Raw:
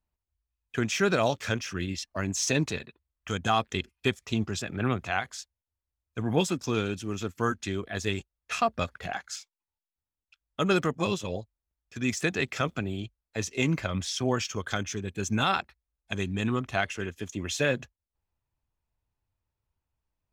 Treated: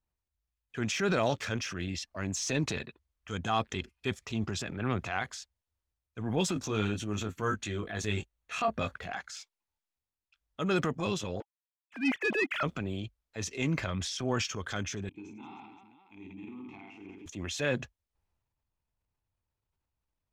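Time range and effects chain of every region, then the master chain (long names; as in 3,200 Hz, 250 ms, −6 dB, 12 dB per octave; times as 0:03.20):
0:06.54–0:08.96: notch filter 5,100 Hz, Q 6.7 + double-tracking delay 19 ms −5 dB
0:11.40–0:12.63: three sine waves on the formant tracks + high-pass filter 260 Hz + leveller curve on the samples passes 2
0:15.09–0:17.26: downward compressor 4 to 1, threshold −29 dBFS + formant filter u + reverse bouncing-ball delay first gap 20 ms, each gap 1.6×, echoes 6, each echo −2 dB
whole clip: high-shelf EQ 9,200 Hz −9.5 dB; transient designer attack −5 dB, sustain +6 dB; level −3 dB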